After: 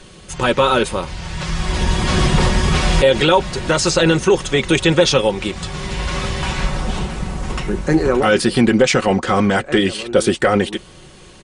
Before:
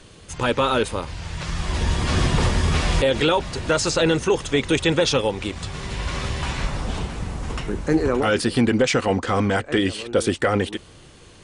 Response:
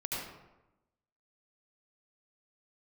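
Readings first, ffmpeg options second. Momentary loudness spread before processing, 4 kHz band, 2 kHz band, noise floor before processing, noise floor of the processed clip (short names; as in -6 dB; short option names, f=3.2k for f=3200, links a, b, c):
11 LU, +5.5 dB, +5.5 dB, -46 dBFS, -41 dBFS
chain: -af "aecho=1:1:5.4:0.44,volume=4.5dB"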